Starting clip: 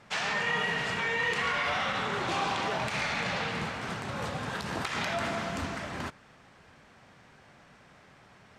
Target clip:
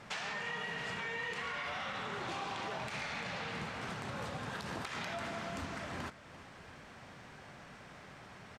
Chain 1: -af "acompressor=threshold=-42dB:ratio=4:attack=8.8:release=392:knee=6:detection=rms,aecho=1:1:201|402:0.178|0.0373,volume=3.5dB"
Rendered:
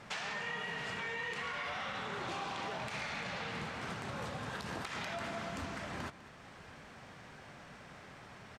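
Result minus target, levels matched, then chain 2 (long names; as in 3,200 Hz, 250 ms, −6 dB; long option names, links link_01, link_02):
echo 143 ms early
-af "acompressor=threshold=-42dB:ratio=4:attack=8.8:release=392:knee=6:detection=rms,aecho=1:1:344|688:0.178|0.0373,volume=3.5dB"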